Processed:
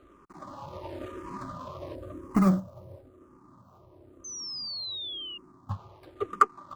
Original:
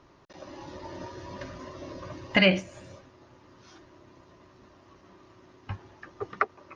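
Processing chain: median filter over 25 samples; 1.95–5.71 bell 2700 Hz -12.5 dB 2.5 oct; 4.24–5.38 painted sound fall 2800–6300 Hz -40 dBFS; bell 1200 Hz +13 dB 0.32 oct; endless phaser -0.97 Hz; gain +4 dB

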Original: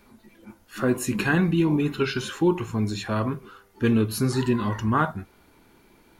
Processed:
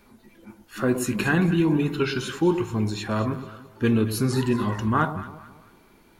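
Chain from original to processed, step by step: echo with dull and thin repeats by turns 0.111 s, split 1000 Hz, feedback 58%, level -10 dB

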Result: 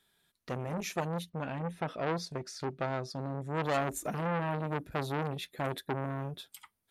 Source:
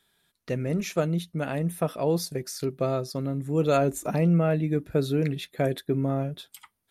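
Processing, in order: 1.29–3.62 LPF 3700 Hz -> 7300 Hz 12 dB/oct; core saturation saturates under 1300 Hz; gain -3.5 dB

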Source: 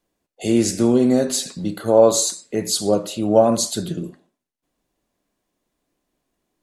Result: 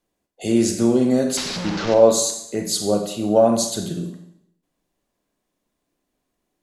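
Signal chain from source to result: 1.37–1.94 delta modulation 32 kbps, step -19 dBFS; Schroeder reverb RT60 0.74 s, combs from 31 ms, DRR 6.5 dB; gain -2 dB

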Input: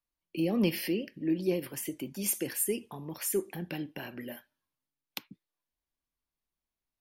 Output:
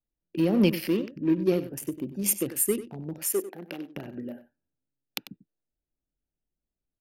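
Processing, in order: Wiener smoothing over 41 samples; 3.22–3.96 HPF 380 Hz 12 dB/oct; on a send: echo 95 ms -14 dB; on the sum: gain +6 dB

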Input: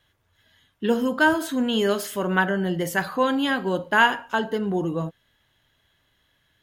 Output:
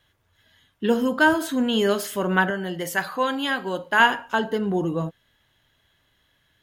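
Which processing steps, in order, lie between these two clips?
2.5–4 low shelf 440 Hz -8.5 dB; gain +1 dB

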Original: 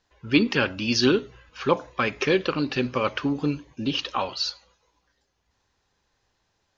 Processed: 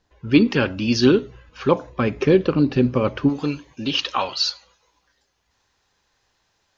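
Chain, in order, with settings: tilt shelf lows +4 dB, about 640 Hz, from 1.89 s lows +8.5 dB, from 3.28 s lows -3 dB; gain +3 dB

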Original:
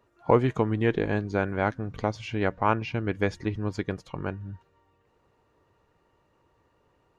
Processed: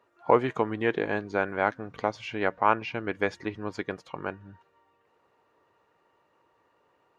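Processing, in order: HPF 680 Hz 6 dB/oct; high shelf 3700 Hz -10 dB; gain +4.5 dB

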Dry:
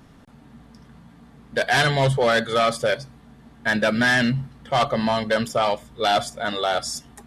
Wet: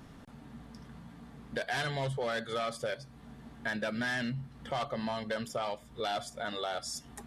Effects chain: compressor 2.5:1, threshold -36 dBFS, peak gain reduction 13 dB; gain -2 dB

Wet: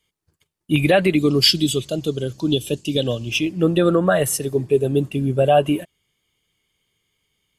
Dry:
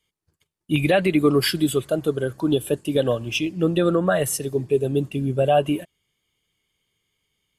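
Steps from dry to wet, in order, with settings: 1.15–3.32 EQ curve 200 Hz 0 dB, 1600 Hz -12 dB, 2800 Hz +4 dB, 6300 Hz +10 dB, 9300 Hz -4 dB; gain +3 dB

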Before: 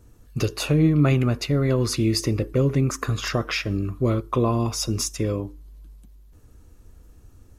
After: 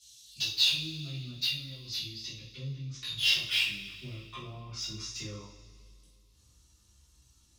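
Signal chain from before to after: treble ducked by the level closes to 690 Hz, closed at -18 dBFS; EQ curve 140 Hz 0 dB, 490 Hz -23 dB, 1500 Hz -24 dB, 3600 Hz +8 dB, 5900 Hz +12 dB; band-pass sweep 3500 Hz -> 1100 Hz, 2.9–5.55; in parallel at -12 dB: sine folder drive 4 dB, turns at -38.5 dBFS; on the sum: chorus voices 2, 0.77 Hz, delay 17 ms, depth 2 ms; two-slope reverb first 0.41 s, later 2.3 s, from -18 dB, DRR -9 dB; gain +4.5 dB

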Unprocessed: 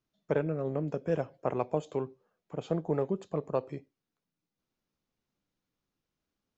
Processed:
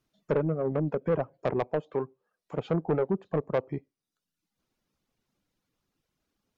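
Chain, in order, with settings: reverb removal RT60 0.77 s; treble ducked by the level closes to 1400 Hz, closed at -31 dBFS; 1.67–2.56 low shelf 360 Hz -6.5 dB; soft clip -26.5 dBFS, distortion -11 dB; gain +7.5 dB

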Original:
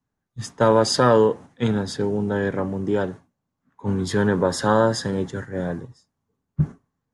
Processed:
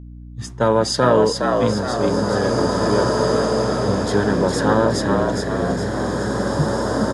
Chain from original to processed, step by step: hum 60 Hz, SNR 14 dB; frequency-shifting echo 0.415 s, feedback 47%, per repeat +65 Hz, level -4 dB; bloom reverb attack 2.3 s, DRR 1.5 dB

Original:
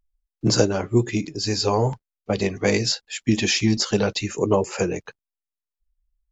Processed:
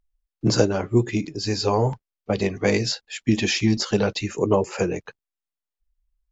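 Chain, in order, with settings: high shelf 6200 Hz -8 dB

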